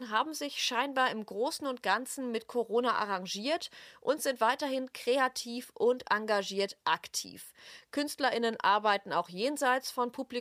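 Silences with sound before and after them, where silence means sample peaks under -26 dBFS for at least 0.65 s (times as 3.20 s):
7.19–7.97 s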